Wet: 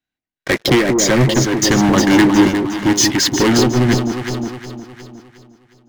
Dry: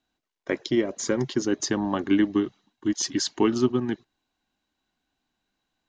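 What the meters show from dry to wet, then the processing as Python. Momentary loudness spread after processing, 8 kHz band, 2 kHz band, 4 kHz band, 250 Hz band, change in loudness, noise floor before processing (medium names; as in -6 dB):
14 LU, +14.0 dB, +16.5 dB, +15.0 dB, +11.0 dB, +12.0 dB, -82 dBFS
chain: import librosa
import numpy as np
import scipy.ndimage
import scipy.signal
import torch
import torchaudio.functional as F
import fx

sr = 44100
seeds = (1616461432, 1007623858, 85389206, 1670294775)

p1 = fx.graphic_eq_10(x, sr, hz=(125, 1000, 2000), db=(8, -4, 10))
p2 = fx.leveller(p1, sr, passes=5)
p3 = p2 + fx.echo_alternate(p2, sr, ms=180, hz=1000.0, feedback_pct=67, wet_db=-3.5, dry=0)
p4 = fx.am_noise(p3, sr, seeds[0], hz=5.7, depth_pct=60)
y = p4 * librosa.db_to_amplitude(1.0)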